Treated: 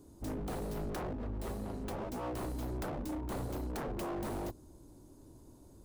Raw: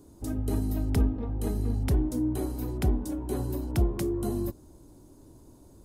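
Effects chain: tracing distortion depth 0.2 ms; wavefolder -29.5 dBFS; 1.13–2.23 notch comb 150 Hz; gain -3.5 dB

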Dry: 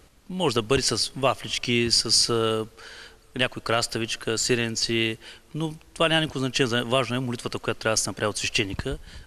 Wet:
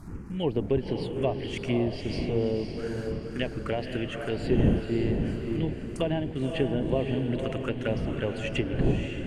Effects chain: wind noise 280 Hz -32 dBFS; dynamic EQ 3800 Hz, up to -7 dB, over -37 dBFS, Q 0.75; in parallel at -10 dB: companded quantiser 4-bit; on the sum: envelope phaser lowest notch 450 Hz, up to 1300 Hz, full sweep at -19.5 dBFS; treble ducked by the level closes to 1300 Hz, closed at -19 dBFS; diffused feedback echo 0.536 s, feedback 44%, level -5 dB; gain -4 dB

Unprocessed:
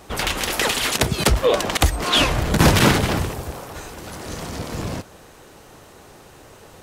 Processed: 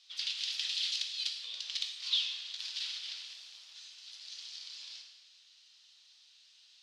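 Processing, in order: compressor 6:1, threshold -21 dBFS, peak gain reduction 11 dB; Butterworth band-pass 4100 Hz, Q 2; plate-style reverb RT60 1.3 s, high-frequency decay 0.85×, DRR 2 dB; gain -4.5 dB

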